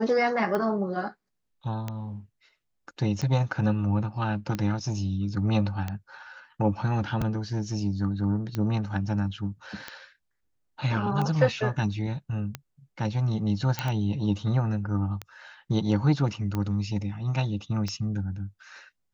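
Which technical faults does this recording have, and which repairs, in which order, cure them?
tick 45 rpm -17 dBFS
13.79 pop -12 dBFS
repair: de-click

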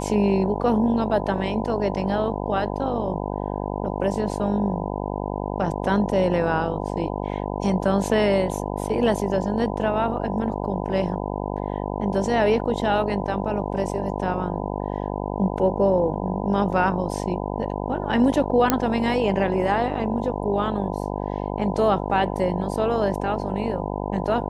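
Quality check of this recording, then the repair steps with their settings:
buzz 50 Hz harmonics 20 -28 dBFS
18.7 pop -2 dBFS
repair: de-click; de-hum 50 Hz, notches 20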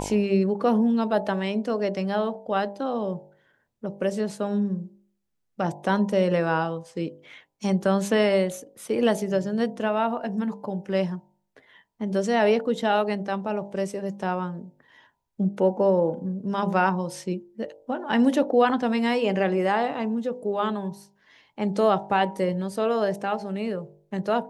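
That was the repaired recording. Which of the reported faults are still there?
none

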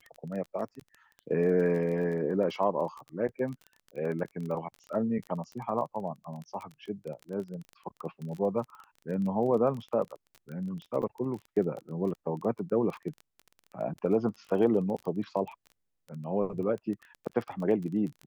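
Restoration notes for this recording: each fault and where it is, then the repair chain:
crackle 21/s -36 dBFS
11.02–11.03 gap 6.4 ms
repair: de-click; interpolate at 11.02, 6.4 ms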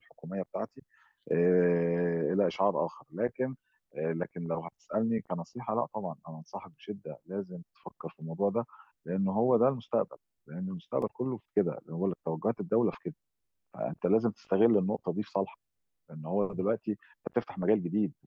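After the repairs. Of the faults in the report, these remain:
none

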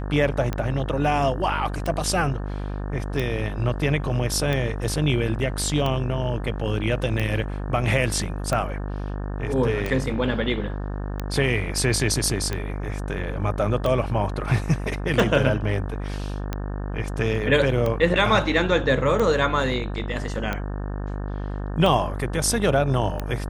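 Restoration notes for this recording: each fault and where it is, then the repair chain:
buzz 50 Hz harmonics 36 -29 dBFS
tick 45 rpm -13 dBFS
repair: de-click; de-hum 50 Hz, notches 36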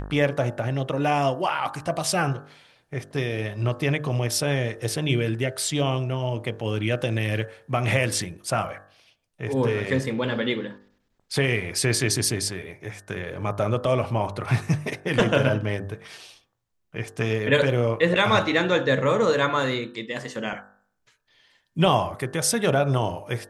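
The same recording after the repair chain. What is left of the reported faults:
none

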